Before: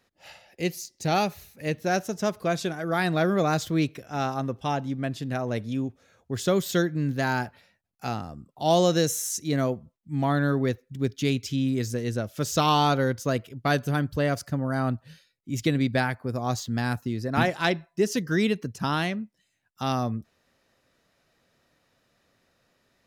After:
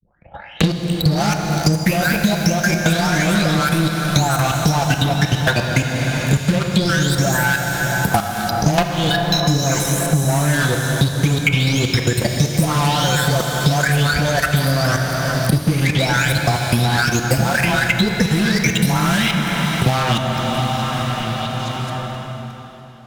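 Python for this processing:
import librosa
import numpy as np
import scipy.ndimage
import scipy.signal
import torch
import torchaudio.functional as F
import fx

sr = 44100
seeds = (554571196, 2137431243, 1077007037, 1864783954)

p1 = fx.spec_delay(x, sr, highs='late', ms=722)
p2 = fx.peak_eq(p1, sr, hz=490.0, db=-8.0, octaves=2.2)
p3 = p2 + 0.31 * np.pad(p2, (int(1.3 * sr / 1000.0), 0))[:len(p2)]
p4 = fx.level_steps(p3, sr, step_db=12)
p5 = fx.transient(p4, sr, attack_db=12, sustain_db=-9)
p6 = fx.leveller(p5, sr, passes=5)
p7 = fx.vibrato(p6, sr, rate_hz=2.4, depth_cents=56.0)
p8 = p7 + fx.echo_stepped(p7, sr, ms=215, hz=310.0, octaves=0.7, feedback_pct=70, wet_db=-11.0, dry=0)
p9 = fx.rev_plate(p8, sr, seeds[0], rt60_s=3.4, hf_ratio=0.9, predelay_ms=0, drr_db=3.5)
p10 = fx.band_squash(p9, sr, depth_pct=100)
y = p10 * 10.0 ** (-1.5 / 20.0)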